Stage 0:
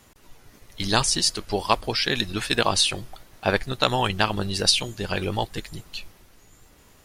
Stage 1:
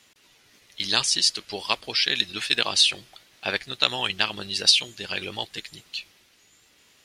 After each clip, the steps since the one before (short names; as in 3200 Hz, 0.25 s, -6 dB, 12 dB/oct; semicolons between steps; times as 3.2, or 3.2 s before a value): weighting filter D; gain -8 dB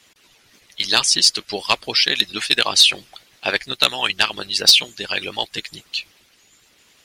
harmonic-percussive split harmonic -13 dB; sine folder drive 5 dB, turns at -1 dBFS; gain -1 dB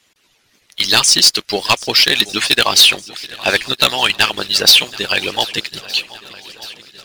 sample leveller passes 2; swung echo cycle 1.216 s, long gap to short 1.5:1, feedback 54%, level -20 dB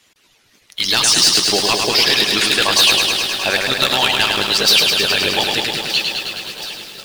limiter -10 dBFS, peak gain reduction 8.5 dB; lo-fi delay 0.105 s, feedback 80%, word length 7-bit, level -4 dB; gain +2.5 dB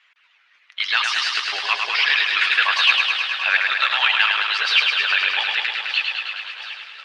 Butterworth band-pass 1800 Hz, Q 1.1; gain +2.5 dB